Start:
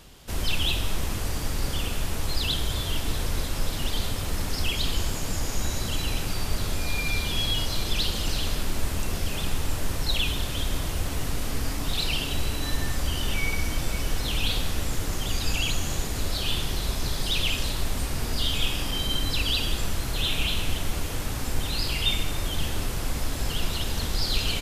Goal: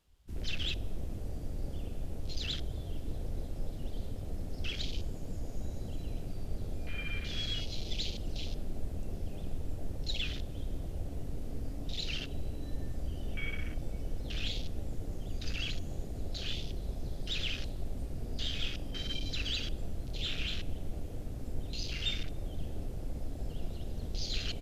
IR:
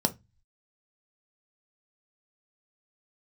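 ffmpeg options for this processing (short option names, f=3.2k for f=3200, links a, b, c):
-af "afwtdn=0.0251,volume=-9dB"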